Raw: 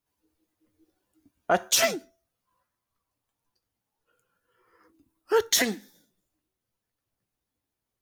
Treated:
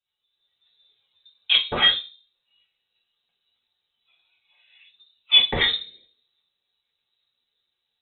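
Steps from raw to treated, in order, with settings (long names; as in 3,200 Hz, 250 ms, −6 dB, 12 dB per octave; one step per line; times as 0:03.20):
automatic gain control gain up to 10 dB
tape wow and flutter 22 cents
notch comb filter 360 Hz
on a send at −1 dB: convolution reverb RT60 0.30 s, pre-delay 7 ms
on the sum: voice inversion scrambler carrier 3,900 Hz
level −4 dB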